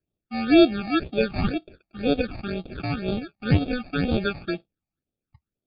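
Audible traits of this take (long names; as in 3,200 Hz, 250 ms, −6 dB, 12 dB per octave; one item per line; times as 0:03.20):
aliases and images of a low sample rate 1,000 Hz, jitter 0%
phaser sweep stages 8, 2 Hz, lowest notch 430–1,800 Hz
MP3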